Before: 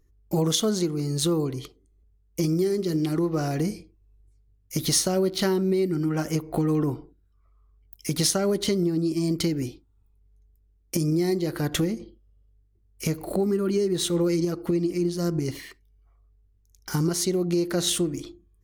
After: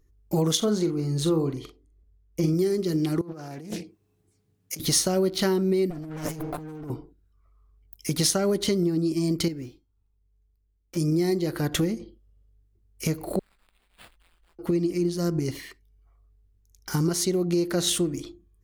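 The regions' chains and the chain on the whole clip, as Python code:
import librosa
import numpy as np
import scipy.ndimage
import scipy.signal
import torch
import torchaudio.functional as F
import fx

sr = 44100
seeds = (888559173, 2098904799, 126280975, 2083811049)

y = fx.chain(x, sr, fx.high_shelf(hz=3500.0, db=-8.5),
    fx.doubler(ms=43.0, db=-8), at=(0.57, 2.54))
y = fx.chain(y, sr, fx.highpass(hz=130.0, slope=24),
    fx.over_compress(threshold_db=-37.0, ratio=-1.0),
    fx.doppler_dist(depth_ms=0.46), at=(3.21, 4.8))
y = fx.chain(y, sr, fx.lower_of_two(delay_ms=6.8),
    fx.over_compress(threshold_db=-35.0, ratio=-1.0), at=(5.9, 6.9))
y = fx.chain(y, sr, fx.median_filter(points=5),
    fx.comb_fb(f0_hz=540.0, decay_s=0.31, harmonics='all', damping=0.0, mix_pct=60), at=(9.48, 10.97))
y = fx.chain(y, sr, fx.cheby2_bandstop(low_hz=130.0, high_hz=7200.0, order=4, stop_db=60),
    fx.sample_hold(seeds[0], rate_hz=6100.0, jitter_pct=0), at=(13.39, 14.59))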